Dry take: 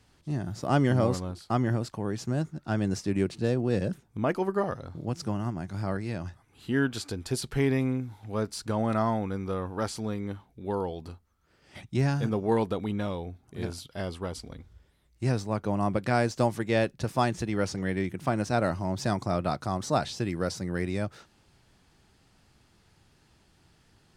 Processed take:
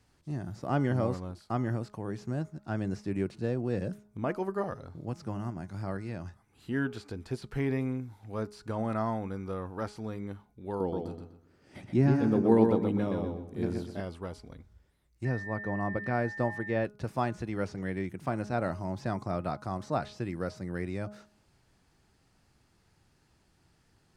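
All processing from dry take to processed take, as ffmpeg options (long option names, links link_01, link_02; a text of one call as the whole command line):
ffmpeg -i in.wav -filter_complex "[0:a]asettb=1/sr,asplit=3[link_01][link_02][link_03];[link_01]atrim=end=10.804[link_04];[link_02]atrim=start=10.8:end=14,asetpts=PTS-STARTPTS,afade=type=in:duration=0.004:curve=qsin,afade=type=out:start_time=3.196:duration=0.004:curve=qsin,equalizer=frequency=270:width=0.77:gain=9.5,asplit=2[link_05][link_06];[link_06]adelay=124,lowpass=frequency=4800:poles=1,volume=-4dB,asplit=2[link_07][link_08];[link_08]adelay=124,lowpass=frequency=4800:poles=1,volume=0.31,asplit=2[link_09][link_10];[link_10]adelay=124,lowpass=frequency=4800:poles=1,volume=0.31,asplit=2[link_11][link_12];[link_12]adelay=124,lowpass=frequency=4800:poles=1,volume=0.31[link_13];[link_05][link_07][link_09][link_11][link_13]amix=inputs=5:normalize=0,atrim=end_sample=141120[link_14];[link_03]atrim=start=13.996[link_15];[link_04][link_14]acrossfade=duration=0.004:curve1=hsin:curve2=qsin[link_16];[link_16][link_15]acrossfade=duration=0.004:curve1=qsin:curve2=hsin,asettb=1/sr,asplit=3[link_17][link_18][link_19];[link_17]atrim=end=15.254[link_20];[link_18]atrim=start=15.25:end=16.85,asetpts=PTS-STARTPTS,afade=type=in:duration=0.004:curve=qsin,afade=type=out:start_time=1.596:duration=0.004:curve=qsin,aemphasis=mode=reproduction:type=75kf,aeval=exprs='val(0)+0.02*sin(2*PI*1800*n/s)':channel_layout=same[link_21];[link_19]atrim=start=16.846[link_22];[link_20][link_21]acrossfade=duration=0.004:curve1=hsin:curve2=qsin[link_23];[link_23][link_22]acrossfade=duration=0.004:curve1=qsin:curve2=hsin,acrossover=split=3600[link_24][link_25];[link_25]acompressor=threshold=-52dB:ratio=4:attack=1:release=60[link_26];[link_24][link_26]amix=inputs=2:normalize=0,equalizer=frequency=3300:width_type=o:width=0.65:gain=-4,bandreject=frequency=208.3:width_type=h:width=4,bandreject=frequency=416.6:width_type=h:width=4,bandreject=frequency=624.9:width_type=h:width=4,bandreject=frequency=833.2:width_type=h:width=4,bandreject=frequency=1041.5:width_type=h:width=4,bandreject=frequency=1249.8:width_type=h:width=4,bandreject=frequency=1458.1:width_type=h:width=4,volume=-4.5dB" out.wav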